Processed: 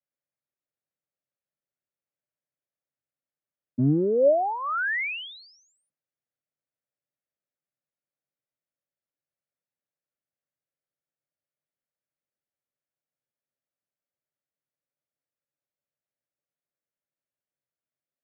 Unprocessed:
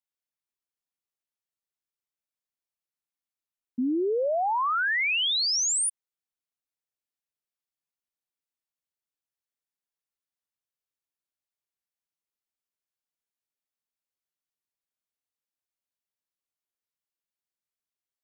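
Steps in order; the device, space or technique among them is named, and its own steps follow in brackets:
sub-octave bass pedal (sub-octave generator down 1 octave, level −2 dB; loudspeaker in its box 88–2,200 Hz, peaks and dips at 140 Hz +8 dB, 290 Hz +3 dB, 570 Hz +10 dB, 1,000 Hz −8 dB)

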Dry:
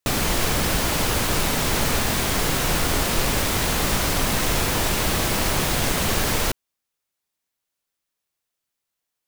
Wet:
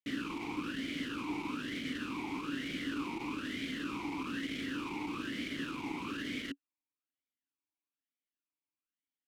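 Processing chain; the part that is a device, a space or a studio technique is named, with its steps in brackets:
talk box (tube saturation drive 15 dB, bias 0.35; formant filter swept between two vowels i-u 1.1 Hz)

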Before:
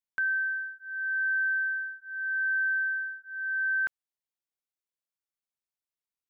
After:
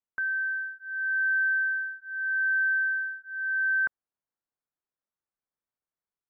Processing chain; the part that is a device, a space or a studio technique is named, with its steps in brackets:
action camera in a waterproof case (low-pass filter 1,700 Hz 24 dB per octave; automatic gain control gain up to 4 dB; AAC 96 kbit/s 32,000 Hz)

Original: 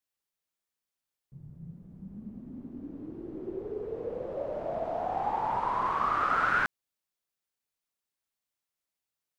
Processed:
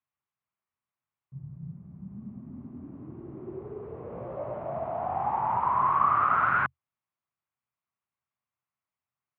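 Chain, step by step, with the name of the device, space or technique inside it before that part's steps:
bass cabinet (loudspeaker in its box 77–2,400 Hz, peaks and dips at 83 Hz +7 dB, 130 Hz +8 dB, 300 Hz −6 dB, 480 Hz −10 dB, 1,100 Hz +6 dB, 1,700 Hz −4 dB)
0:04.10–0:04.58: double-tracking delay 17 ms −4 dB
level +1.5 dB

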